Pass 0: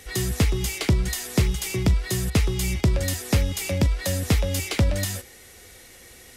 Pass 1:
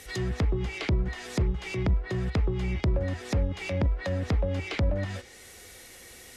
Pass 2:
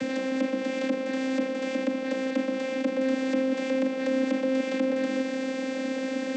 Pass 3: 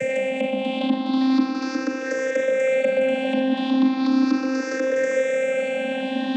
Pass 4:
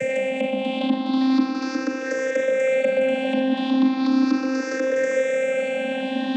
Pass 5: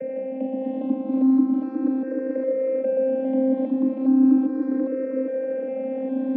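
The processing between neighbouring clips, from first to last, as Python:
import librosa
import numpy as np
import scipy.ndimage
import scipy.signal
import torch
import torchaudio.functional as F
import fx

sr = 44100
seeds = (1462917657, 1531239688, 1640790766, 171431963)

y1 = fx.low_shelf(x, sr, hz=220.0, db=-3.5)
y1 = fx.env_lowpass_down(y1, sr, base_hz=930.0, full_db=-20.5)
y1 = fx.transient(y1, sr, attack_db=-6, sustain_db=-1)
y2 = fx.bin_compress(y1, sr, power=0.2)
y2 = fx.peak_eq(y2, sr, hz=6000.0, db=3.5, octaves=0.33)
y2 = fx.vocoder(y2, sr, bands=16, carrier='saw', carrier_hz=263.0)
y2 = y2 * 10.0 ** (-2.0 / 20.0)
y3 = fx.spec_ripple(y2, sr, per_octave=0.51, drift_hz=0.37, depth_db=23)
y3 = fx.echo_stepped(y3, sr, ms=402, hz=720.0, octaves=0.7, feedback_pct=70, wet_db=-4)
y4 = y3
y5 = fx.reverse_delay(y4, sr, ms=406, wet_db=-4.0)
y5 = fx.ladder_bandpass(y5, sr, hz=350.0, resonance_pct=45)
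y5 = y5 * 10.0 ** (7.0 / 20.0)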